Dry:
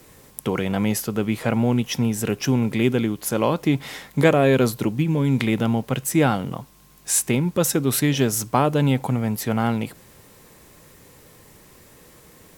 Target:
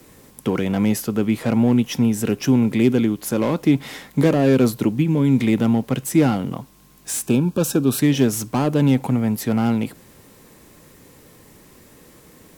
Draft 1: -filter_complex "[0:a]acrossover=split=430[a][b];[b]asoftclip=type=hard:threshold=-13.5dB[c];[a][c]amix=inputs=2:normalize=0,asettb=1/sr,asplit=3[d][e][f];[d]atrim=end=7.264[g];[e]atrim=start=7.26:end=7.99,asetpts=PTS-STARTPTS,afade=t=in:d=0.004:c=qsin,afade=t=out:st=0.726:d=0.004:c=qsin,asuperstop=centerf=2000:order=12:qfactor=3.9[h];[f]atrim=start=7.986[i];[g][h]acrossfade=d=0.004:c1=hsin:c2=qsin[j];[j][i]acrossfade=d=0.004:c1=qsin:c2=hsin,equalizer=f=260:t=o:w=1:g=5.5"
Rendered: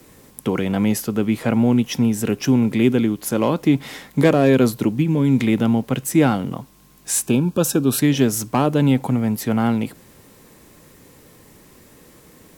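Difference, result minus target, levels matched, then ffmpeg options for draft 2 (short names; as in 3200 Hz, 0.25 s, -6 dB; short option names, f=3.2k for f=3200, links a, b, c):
hard clip: distortion -11 dB
-filter_complex "[0:a]acrossover=split=430[a][b];[b]asoftclip=type=hard:threshold=-22.5dB[c];[a][c]amix=inputs=2:normalize=0,asettb=1/sr,asplit=3[d][e][f];[d]atrim=end=7.264[g];[e]atrim=start=7.26:end=7.99,asetpts=PTS-STARTPTS,afade=t=in:d=0.004:c=qsin,afade=t=out:st=0.726:d=0.004:c=qsin,asuperstop=centerf=2000:order=12:qfactor=3.9[h];[f]atrim=start=7.986[i];[g][h]acrossfade=d=0.004:c1=hsin:c2=qsin[j];[j][i]acrossfade=d=0.004:c1=qsin:c2=hsin,equalizer=f=260:t=o:w=1:g=5.5"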